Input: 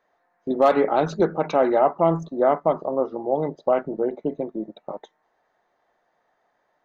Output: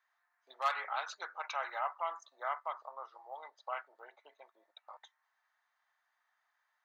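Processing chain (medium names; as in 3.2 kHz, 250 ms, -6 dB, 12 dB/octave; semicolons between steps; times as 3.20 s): high-pass 1.1 kHz 24 dB/octave; trim -5.5 dB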